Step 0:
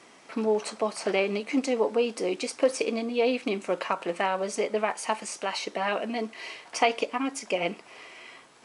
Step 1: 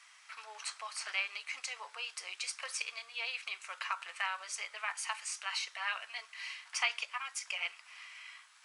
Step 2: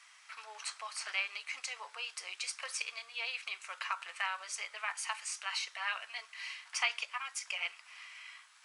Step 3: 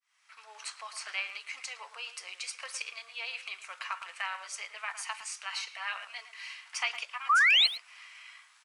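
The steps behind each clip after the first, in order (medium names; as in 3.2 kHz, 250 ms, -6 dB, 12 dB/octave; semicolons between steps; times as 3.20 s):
high-pass 1.2 kHz 24 dB/octave; trim -3 dB
no audible change
fade-in on the opening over 0.65 s; painted sound rise, 7.29–7.67 s, 1.1–4.4 kHz -22 dBFS; speakerphone echo 110 ms, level -11 dB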